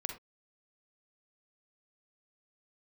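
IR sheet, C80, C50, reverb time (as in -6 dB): 14.0 dB, 6.5 dB, not exponential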